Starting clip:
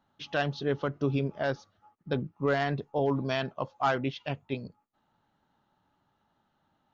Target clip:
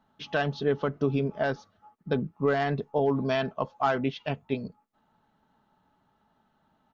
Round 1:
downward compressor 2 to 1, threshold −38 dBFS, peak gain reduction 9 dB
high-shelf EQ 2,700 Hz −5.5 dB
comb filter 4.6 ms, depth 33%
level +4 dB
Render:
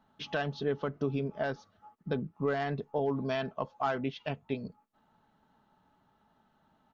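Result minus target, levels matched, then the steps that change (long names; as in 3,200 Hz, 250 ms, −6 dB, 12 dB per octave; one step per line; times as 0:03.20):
downward compressor: peak gain reduction +6 dB
change: downward compressor 2 to 1, threshold −26.5 dBFS, peak gain reduction 3.5 dB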